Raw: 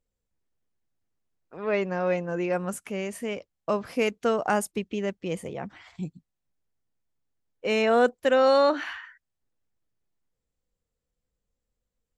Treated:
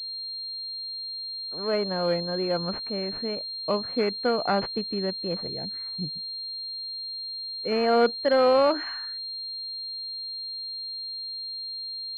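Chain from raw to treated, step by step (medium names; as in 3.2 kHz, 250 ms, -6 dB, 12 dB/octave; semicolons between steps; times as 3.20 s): wow and flutter 81 cents; 5.47–7.72 s: touch-sensitive phaser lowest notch 410 Hz, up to 1.2 kHz, full sweep at -31 dBFS; class-D stage that switches slowly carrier 4.2 kHz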